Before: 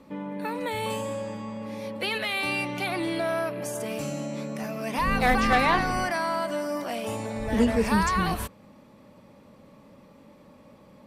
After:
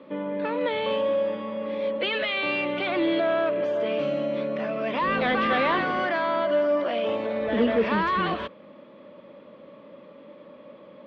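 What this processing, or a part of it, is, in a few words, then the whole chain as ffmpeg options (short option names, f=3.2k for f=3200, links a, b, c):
overdrive pedal into a guitar cabinet: -filter_complex "[0:a]asplit=2[a][b];[b]highpass=f=720:p=1,volume=17dB,asoftclip=type=tanh:threshold=-11dB[c];[a][c]amix=inputs=2:normalize=0,lowpass=f=1.1k:p=1,volume=-6dB,highpass=94,equalizer=f=110:t=q:w=4:g=-8,equalizer=f=340:t=q:w=4:g=4,equalizer=f=570:t=q:w=4:g=6,equalizer=f=810:t=q:w=4:g=-9,equalizer=f=3.3k:t=q:w=4:g=8,lowpass=f=3.9k:w=0.5412,lowpass=f=3.9k:w=1.3066,volume=-1.5dB"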